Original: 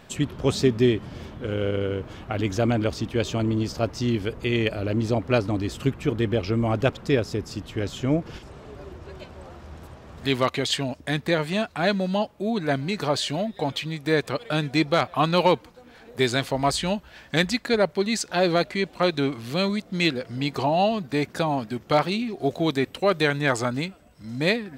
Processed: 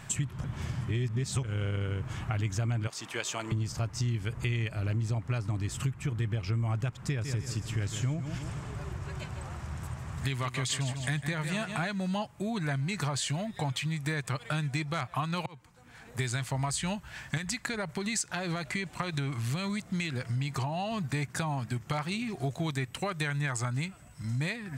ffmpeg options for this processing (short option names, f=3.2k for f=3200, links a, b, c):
-filter_complex "[0:a]asettb=1/sr,asplit=3[a][b][c];[a]atrim=end=2.874[d];[b]atrim=start=2.87:end=3.52,asetpts=PTS-STARTPTS,afade=t=in:d=0.004:c=qsin,afade=t=out:st=0.646:d=0.004:c=qsin,highpass=510[e];[c]atrim=start=3.516[f];[d][e]acrossfade=d=0.004:c1=hsin:c2=qsin[g];[g][f]acrossfade=d=0.004:c1=qsin:c2=hsin,asettb=1/sr,asplit=3[h][i][j];[h]atrim=end=7.064[k];[i]atrim=start=7.06:end=11.86,asetpts=PTS-STARTPTS,afade=t=in:d=0.004:c=qsin,afade=t=out:st=4.796:d=0.004:c=qsin,aecho=1:1:152|304|456|608:0.282|0.113|0.0451|0.018,atrim=end_sample=211680[l];[j]atrim=start=11.856[m];[k][l]acrossfade=d=0.004:c1=hsin:c2=qsin[n];[n][m]acrossfade=d=0.004:c1=qsin:c2=hsin,asettb=1/sr,asplit=3[o][p][q];[o]atrim=end=17.374[r];[p]atrim=start=17.37:end=21.04,asetpts=PTS-STARTPTS,afade=t=in:d=0.004:c=qsin,afade=t=out:st=3.666:d=0.004:c=qsin,acompressor=threshold=-23dB:ratio=6:attack=3.2:release=140:knee=1:detection=peak[s];[q]atrim=start=21.036[t];[r][s]acrossfade=d=0.004:c1=hsin:c2=qsin[u];[u][t]acrossfade=d=0.004:c1=qsin:c2=hsin,asplit=4[v][w][x][y];[v]atrim=end=0.442[z];[w]atrim=start=0.438:end=1.432,asetpts=PTS-STARTPTS,areverse[aa];[x]atrim=start=1.428:end=15.46,asetpts=PTS-STARTPTS,afade=t=out:st=14.028:d=0.004:c=hsin[ab];[y]atrim=start=15.46,asetpts=PTS-STARTPTS,afade=t=in:d=0.81[ac];[z][aa]acrossfade=d=0.004:c1=hsin:c2=hsin[ad];[ab][ac]concat=n=2:v=0:a=1[ae];[ad][ae]acrossfade=d=0.004:c1=hsin:c2=hsin,alimiter=limit=-13dB:level=0:latency=1:release=230,equalizer=f=125:t=o:w=1:g=12,equalizer=f=250:t=o:w=1:g=-5,equalizer=f=500:t=o:w=1:g=-8,equalizer=f=1k:t=o:w=1:g=3,equalizer=f=2k:t=o:w=1:g=4,equalizer=f=4k:t=o:w=1:g=-4,equalizer=f=8k:t=o:w=1:g=11,acompressor=threshold=-30dB:ratio=4"